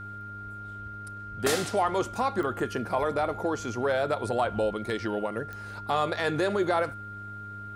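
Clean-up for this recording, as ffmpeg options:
ffmpeg -i in.wav -af "adeclick=threshold=4,bandreject=frequency=102.8:width_type=h:width=4,bandreject=frequency=205.6:width_type=h:width=4,bandreject=frequency=308.4:width_type=h:width=4,bandreject=frequency=411.2:width_type=h:width=4,bandreject=frequency=1400:width=30" out.wav

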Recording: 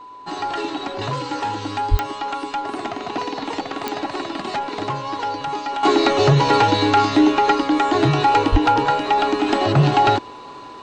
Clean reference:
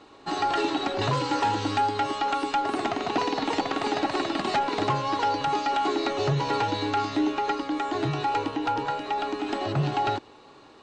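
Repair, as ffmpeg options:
ffmpeg -i in.wav -filter_complex "[0:a]adeclick=threshold=4,bandreject=frequency=1000:width=30,asplit=3[link_01][link_02][link_03];[link_01]afade=type=out:start_time=1.9:duration=0.02[link_04];[link_02]highpass=frequency=140:width=0.5412,highpass=frequency=140:width=1.3066,afade=type=in:start_time=1.9:duration=0.02,afade=type=out:start_time=2.02:duration=0.02[link_05];[link_03]afade=type=in:start_time=2.02:duration=0.02[link_06];[link_04][link_05][link_06]amix=inputs=3:normalize=0,asplit=3[link_07][link_08][link_09];[link_07]afade=type=out:start_time=8.51:duration=0.02[link_10];[link_08]highpass=frequency=140:width=0.5412,highpass=frequency=140:width=1.3066,afade=type=in:start_time=8.51:duration=0.02,afade=type=out:start_time=8.63:duration=0.02[link_11];[link_09]afade=type=in:start_time=8.63:duration=0.02[link_12];[link_10][link_11][link_12]amix=inputs=3:normalize=0,asetnsamples=nb_out_samples=441:pad=0,asendcmd='5.83 volume volume -10.5dB',volume=0dB" out.wav

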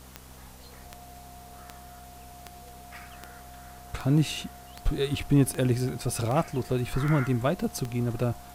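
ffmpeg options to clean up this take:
ffmpeg -i in.wav -af "adeclick=threshold=4,bandreject=frequency=64.2:width_type=h:width=4,bandreject=frequency=128.4:width_type=h:width=4,bandreject=frequency=192.6:width_type=h:width=4,bandreject=frequency=256.8:width_type=h:width=4,bandreject=frequency=710:width=30,afwtdn=0.0022" out.wav

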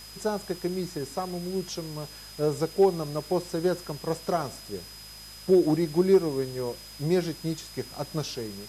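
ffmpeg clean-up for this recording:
ffmpeg -i in.wav -af "adeclick=threshold=4,bandreject=frequency=52.7:width_type=h:width=4,bandreject=frequency=105.4:width_type=h:width=4,bandreject=frequency=158.1:width_type=h:width=4,bandreject=frequency=210.8:width_type=h:width=4,bandreject=frequency=5000:width=30,afwtdn=0.0045" out.wav

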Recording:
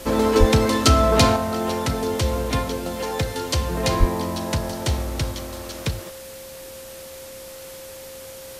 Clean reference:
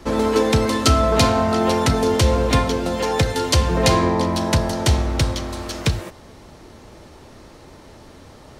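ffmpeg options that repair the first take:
ffmpeg -i in.wav -filter_complex "[0:a]bandreject=frequency=530:width=30,asplit=3[link_01][link_02][link_03];[link_01]afade=type=out:start_time=0.39:duration=0.02[link_04];[link_02]highpass=frequency=140:width=0.5412,highpass=frequency=140:width=1.3066,afade=type=in:start_time=0.39:duration=0.02,afade=type=out:start_time=0.51:duration=0.02[link_05];[link_03]afade=type=in:start_time=0.51:duration=0.02[link_06];[link_04][link_05][link_06]amix=inputs=3:normalize=0,asplit=3[link_07][link_08][link_09];[link_07]afade=type=out:start_time=3.99:duration=0.02[link_10];[link_08]highpass=frequency=140:width=0.5412,highpass=frequency=140:width=1.3066,afade=type=in:start_time=3.99:duration=0.02,afade=type=out:start_time=4.11:duration=0.02[link_11];[link_09]afade=type=in:start_time=4.11:duration=0.02[link_12];[link_10][link_11][link_12]amix=inputs=3:normalize=0,afwtdn=0.0089,asetnsamples=nb_out_samples=441:pad=0,asendcmd='1.36 volume volume 6dB',volume=0dB" out.wav

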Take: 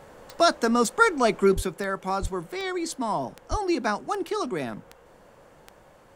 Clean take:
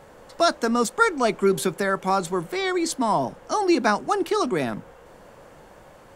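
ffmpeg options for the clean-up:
ffmpeg -i in.wav -filter_complex "[0:a]adeclick=threshold=4,asplit=3[link_01][link_02][link_03];[link_01]afade=type=out:start_time=1.55:duration=0.02[link_04];[link_02]highpass=frequency=140:width=0.5412,highpass=frequency=140:width=1.3066,afade=type=in:start_time=1.55:duration=0.02,afade=type=out:start_time=1.67:duration=0.02[link_05];[link_03]afade=type=in:start_time=1.67:duration=0.02[link_06];[link_04][link_05][link_06]amix=inputs=3:normalize=0,asplit=3[link_07][link_08][link_09];[link_07]afade=type=out:start_time=2.21:duration=0.02[link_10];[link_08]highpass=frequency=140:width=0.5412,highpass=frequency=140:width=1.3066,afade=type=in:start_time=2.21:duration=0.02,afade=type=out:start_time=2.33:duration=0.02[link_11];[link_09]afade=type=in:start_time=2.33:duration=0.02[link_12];[link_10][link_11][link_12]amix=inputs=3:normalize=0,asplit=3[link_13][link_14][link_15];[link_13]afade=type=out:start_time=3.5:duration=0.02[link_16];[link_14]highpass=frequency=140:width=0.5412,highpass=frequency=140:width=1.3066,afade=type=in:start_time=3.5:duration=0.02,afade=type=out:start_time=3.62:duration=0.02[link_17];[link_15]afade=type=in:start_time=3.62:duration=0.02[link_18];[link_16][link_17][link_18]amix=inputs=3:normalize=0,asetnsamples=nb_out_samples=441:pad=0,asendcmd='1.54 volume volume 5.5dB',volume=0dB" out.wav

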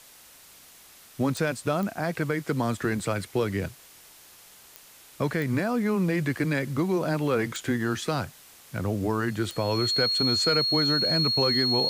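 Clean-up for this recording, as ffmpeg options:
ffmpeg -i in.wav -af "adeclick=threshold=4,bandreject=frequency=4300:width=30,afwtdn=0.0032" out.wav

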